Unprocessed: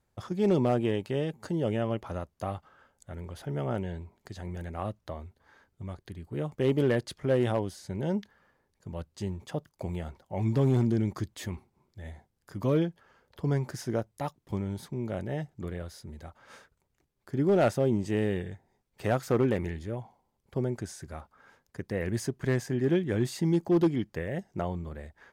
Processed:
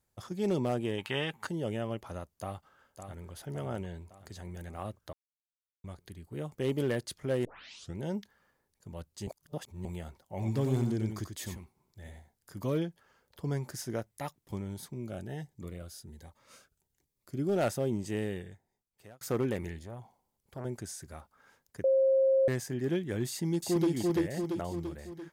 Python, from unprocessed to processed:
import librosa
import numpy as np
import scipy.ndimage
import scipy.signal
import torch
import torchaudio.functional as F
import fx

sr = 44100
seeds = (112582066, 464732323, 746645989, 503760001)

y = fx.band_shelf(x, sr, hz=1700.0, db=13.0, octaves=2.4, at=(0.98, 1.47))
y = fx.echo_throw(y, sr, start_s=2.3, length_s=1.0, ms=560, feedback_pct=55, wet_db=-8.0)
y = fx.echo_single(y, sr, ms=91, db=-7.0, at=(10.38, 12.57), fade=0.02)
y = fx.peak_eq(y, sr, hz=2000.0, db=6.0, octaves=0.77, at=(13.94, 14.4))
y = fx.notch_cascade(y, sr, direction='rising', hz=1.3, at=(14.94, 17.56))
y = fx.transformer_sat(y, sr, knee_hz=730.0, at=(19.79, 20.65))
y = fx.echo_throw(y, sr, start_s=23.28, length_s=0.64, ms=340, feedback_pct=55, wet_db=-0.5)
y = fx.edit(y, sr, fx.silence(start_s=5.13, length_s=0.71),
    fx.tape_start(start_s=7.45, length_s=0.52),
    fx.reverse_span(start_s=9.27, length_s=0.58),
    fx.fade_out_span(start_s=18.16, length_s=1.05),
    fx.bleep(start_s=21.84, length_s=0.64, hz=534.0, db=-16.0), tone=tone)
y = fx.high_shelf(y, sr, hz=5300.0, db=12.0)
y = y * 10.0 ** (-5.5 / 20.0)